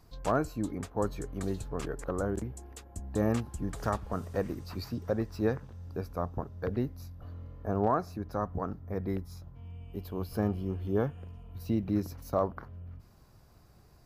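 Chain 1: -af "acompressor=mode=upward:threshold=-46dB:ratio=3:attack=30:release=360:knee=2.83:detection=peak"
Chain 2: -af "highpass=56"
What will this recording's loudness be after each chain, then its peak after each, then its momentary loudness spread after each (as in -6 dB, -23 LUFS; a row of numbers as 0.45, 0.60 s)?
-34.0, -34.0 LUFS; -15.5, -13.5 dBFS; 15, 16 LU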